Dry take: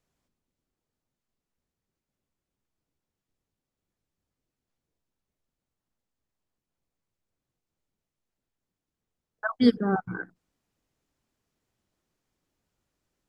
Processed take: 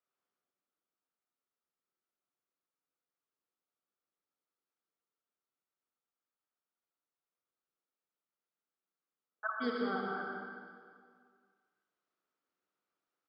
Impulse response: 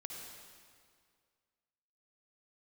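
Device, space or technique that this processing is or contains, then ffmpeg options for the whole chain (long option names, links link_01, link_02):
station announcement: -filter_complex "[0:a]highpass=340,lowpass=4700,equalizer=frequency=1300:width_type=o:width=0.39:gain=10.5,aecho=1:1:122.4|204.1:0.355|0.282[link_01];[1:a]atrim=start_sample=2205[link_02];[link_01][link_02]afir=irnorm=-1:irlink=0,volume=-7dB"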